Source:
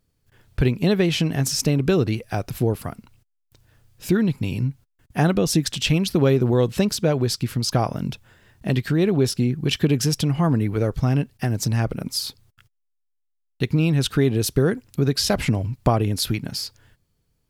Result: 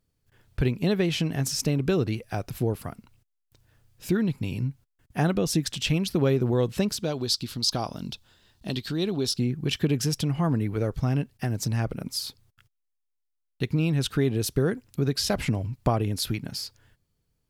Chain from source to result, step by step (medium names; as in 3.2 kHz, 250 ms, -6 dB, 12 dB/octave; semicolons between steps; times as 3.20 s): 7.03–9.39 s: graphic EQ 125/500/2000/4000 Hz -7/-4/-8/+11 dB; trim -5 dB